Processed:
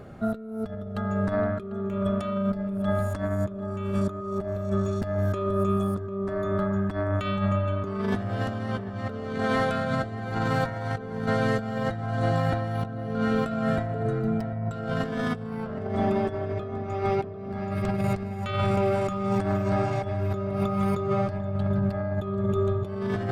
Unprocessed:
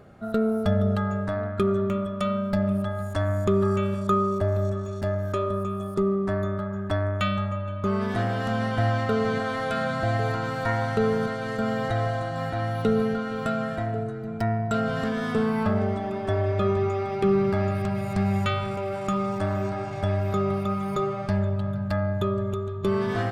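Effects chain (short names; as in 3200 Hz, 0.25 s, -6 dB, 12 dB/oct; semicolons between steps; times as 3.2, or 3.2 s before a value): low shelf 360 Hz +5 dB; notches 50/100/150/200 Hz; negative-ratio compressor -27 dBFS, ratio -0.5; darkening echo 0.746 s, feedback 68%, low-pass 1400 Hz, level -11.5 dB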